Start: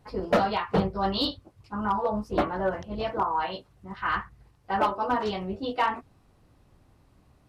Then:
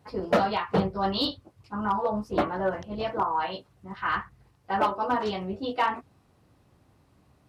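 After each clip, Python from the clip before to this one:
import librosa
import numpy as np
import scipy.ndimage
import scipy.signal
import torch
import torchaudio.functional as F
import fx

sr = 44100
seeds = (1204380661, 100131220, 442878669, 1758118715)

y = scipy.signal.sosfilt(scipy.signal.butter(2, 74.0, 'highpass', fs=sr, output='sos'), x)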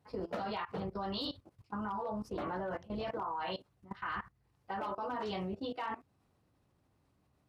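y = fx.level_steps(x, sr, step_db=18)
y = y * librosa.db_to_amplitude(-1.5)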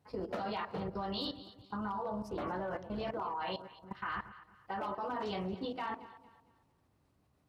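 y = fx.echo_alternate(x, sr, ms=114, hz=840.0, feedback_pct=58, wet_db=-11.0)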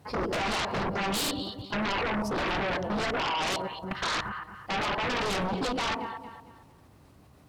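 y = fx.fold_sine(x, sr, drive_db=13, ceiling_db=-26.0)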